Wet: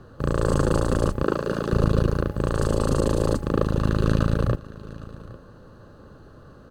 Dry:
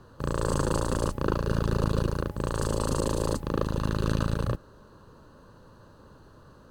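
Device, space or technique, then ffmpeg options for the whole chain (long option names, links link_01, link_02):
behind a face mask: -filter_complex "[0:a]highshelf=frequency=3100:gain=-8,asettb=1/sr,asplit=3[link_01][link_02][link_03];[link_01]atrim=end=1.244[link_04];[link_02]atrim=start=1.24:end=1.73,asetpts=PTS-STARTPTS,afade=type=in:duration=0.004:curve=qsin,afade=type=out:start_time=0.486:duration=0.004:curve=qsin,highpass=230[link_05];[link_03]atrim=start=1.726[link_06];[link_04][link_05]acrossfade=duration=0.004:curve1=hsin:curve2=qsin[link_07];[link_07][link_06]acrossfade=duration=0.004:curve1=qsin:curve2=hsin,bandreject=frequency=960:width=5.3,aecho=1:1:811:0.119,volume=6dB"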